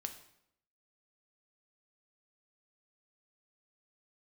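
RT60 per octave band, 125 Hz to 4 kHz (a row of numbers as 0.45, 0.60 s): 0.80, 0.85, 0.75, 0.70, 0.65, 0.60 s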